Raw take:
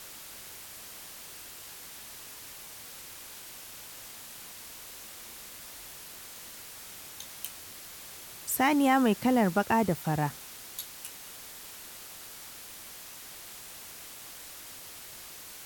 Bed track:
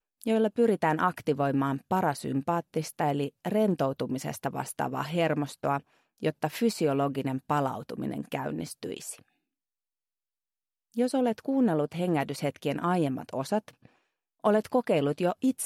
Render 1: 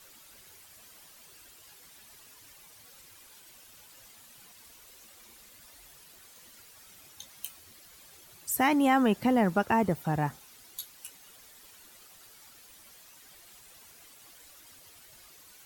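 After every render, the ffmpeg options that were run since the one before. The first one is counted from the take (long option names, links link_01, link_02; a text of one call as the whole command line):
ffmpeg -i in.wav -af "afftdn=noise_reduction=11:noise_floor=-46" out.wav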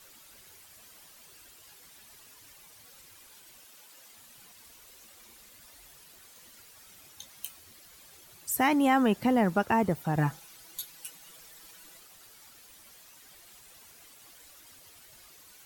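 ffmpeg -i in.wav -filter_complex "[0:a]asettb=1/sr,asplit=3[link_01][link_02][link_03];[link_01]atrim=end=3.654[link_04];[link_02]atrim=start=3.65:end=4.13,asetpts=PTS-STARTPTS,afade=type=in:duration=0.004:curve=qsin,afade=type=out:start_time=0.476:duration=0.004:curve=qsin,highpass=230[link_05];[link_03]atrim=start=4.126[link_06];[link_04][link_05]acrossfade=duration=0.004:curve1=hsin:curve2=qsin[link_07];[link_07][link_06]acrossfade=duration=0.004:curve1=qsin:curve2=hsin,asettb=1/sr,asplit=3[link_08][link_09][link_10];[link_08]atrim=end=10.164[link_11];[link_09]atrim=start=10.16:end=12,asetpts=PTS-STARTPTS,afade=type=in:duration=0.004:curve=qsin,afade=type=out:start_time=1.836:duration=0.004:curve=qsin,aecho=1:1:6.1:0.79,atrim=end_sample=81144[link_12];[link_10]atrim=start=11.996[link_13];[link_11][link_12]acrossfade=duration=0.004:curve1=hsin:curve2=qsin[link_14];[link_14][link_13]acrossfade=duration=0.004:curve1=qsin:curve2=hsin" out.wav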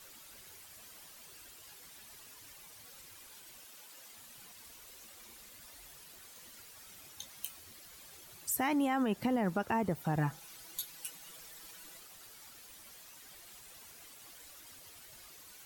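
ffmpeg -i in.wav -af "alimiter=limit=-18.5dB:level=0:latency=1,acompressor=threshold=-36dB:ratio=1.5" out.wav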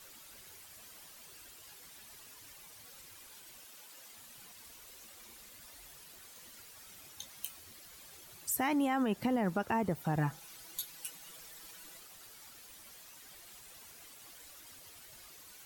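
ffmpeg -i in.wav -af anull out.wav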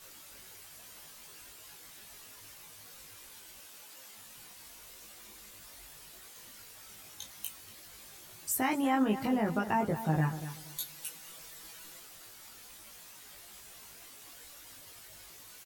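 ffmpeg -i in.wav -filter_complex "[0:a]asplit=2[link_01][link_02];[link_02]adelay=19,volume=-2dB[link_03];[link_01][link_03]amix=inputs=2:normalize=0,asplit=2[link_04][link_05];[link_05]adelay=238,lowpass=frequency=3400:poles=1,volume=-12dB,asplit=2[link_06][link_07];[link_07]adelay=238,lowpass=frequency=3400:poles=1,volume=0.24,asplit=2[link_08][link_09];[link_09]adelay=238,lowpass=frequency=3400:poles=1,volume=0.24[link_10];[link_04][link_06][link_08][link_10]amix=inputs=4:normalize=0" out.wav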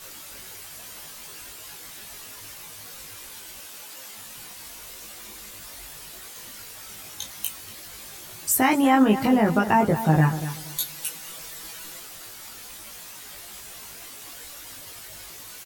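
ffmpeg -i in.wav -af "volume=10.5dB" out.wav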